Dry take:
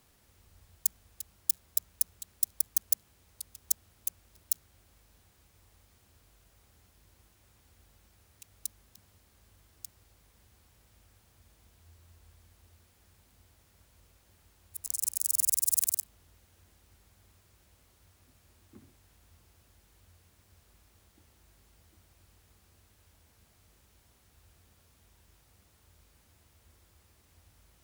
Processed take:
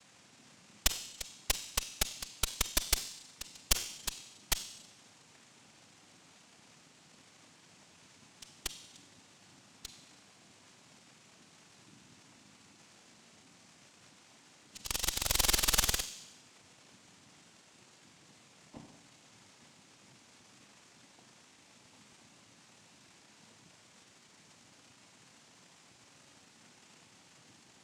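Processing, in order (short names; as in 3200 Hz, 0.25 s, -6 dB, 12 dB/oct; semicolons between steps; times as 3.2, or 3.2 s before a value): crackle 490/s -49 dBFS; noise vocoder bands 4; on a send at -5.5 dB: reverb RT60 1.0 s, pre-delay 31 ms; on the sum: added harmonics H 6 -8 dB, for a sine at -16 dBFS; gain +3 dB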